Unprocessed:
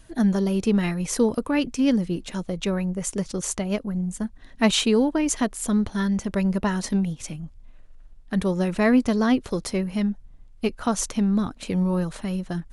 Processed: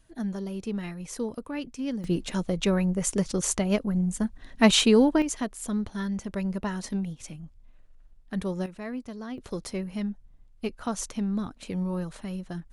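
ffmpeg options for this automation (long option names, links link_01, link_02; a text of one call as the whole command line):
ffmpeg -i in.wav -af "asetnsamples=nb_out_samples=441:pad=0,asendcmd='2.04 volume volume 1dB;5.22 volume volume -7dB;8.66 volume volume -17dB;9.38 volume volume -7dB',volume=-11dB" out.wav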